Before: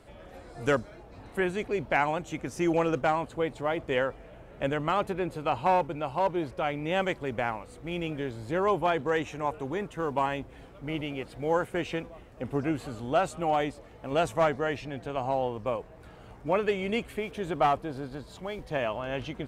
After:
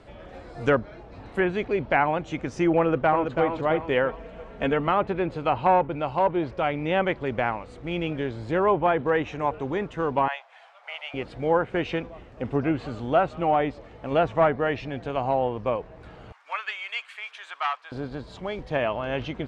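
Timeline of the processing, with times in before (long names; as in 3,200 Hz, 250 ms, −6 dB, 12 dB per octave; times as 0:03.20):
0:02.79–0:03.44: delay throw 330 ms, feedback 40%, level −6.5 dB
0:04.09–0:04.87: comb filter 4.4 ms
0:10.28–0:11.14: elliptic high-pass filter 690 Hz, stop band 60 dB
0:16.32–0:17.92: high-pass filter 1,100 Hz 24 dB per octave
whole clip: treble cut that deepens with the level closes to 2,200 Hz, closed at −22 dBFS; low-pass filter 5,100 Hz 12 dB per octave; level +4.5 dB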